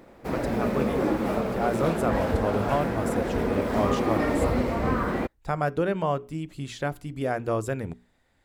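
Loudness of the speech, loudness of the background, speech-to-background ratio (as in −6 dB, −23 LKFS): −30.0 LKFS, −27.0 LKFS, −3.0 dB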